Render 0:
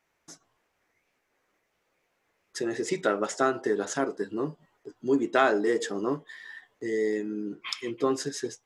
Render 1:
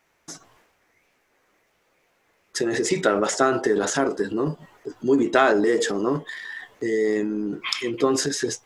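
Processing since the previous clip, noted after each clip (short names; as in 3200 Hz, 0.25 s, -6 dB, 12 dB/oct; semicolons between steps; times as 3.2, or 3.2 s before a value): in parallel at -1.5 dB: compressor, threshold -35 dBFS, peak gain reduction 17 dB; on the sum: transient shaper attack +2 dB, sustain +8 dB; gain +2.5 dB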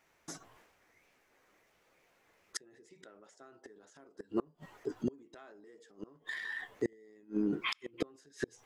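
flipped gate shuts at -16 dBFS, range -33 dB; dynamic EQ 5600 Hz, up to -5 dB, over -56 dBFS, Q 0.88; gain -4 dB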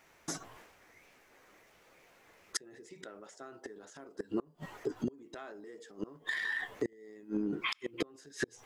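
compressor 5:1, threshold -39 dBFS, peak gain reduction 11 dB; gain +7.5 dB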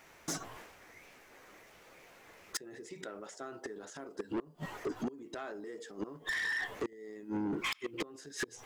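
soft clip -35.5 dBFS, distortion -7 dB; gain +5 dB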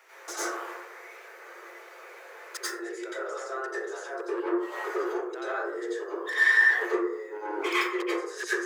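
rippled Chebyshev high-pass 340 Hz, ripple 6 dB; plate-style reverb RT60 0.74 s, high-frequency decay 0.35×, pre-delay 80 ms, DRR -10 dB; gain +3.5 dB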